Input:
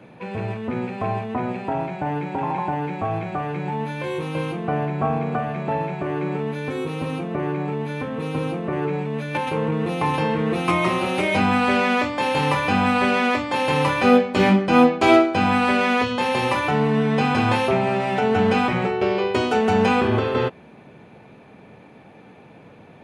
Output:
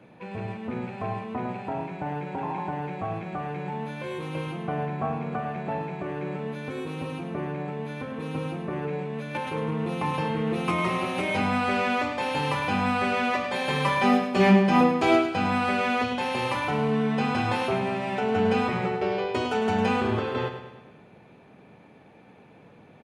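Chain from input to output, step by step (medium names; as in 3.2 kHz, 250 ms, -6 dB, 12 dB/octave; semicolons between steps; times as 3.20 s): 13.33–14.81 s: comb 5.1 ms, depth 73%; on a send: feedback delay 104 ms, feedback 52%, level -9 dB; on the sum: trim -6.5 dB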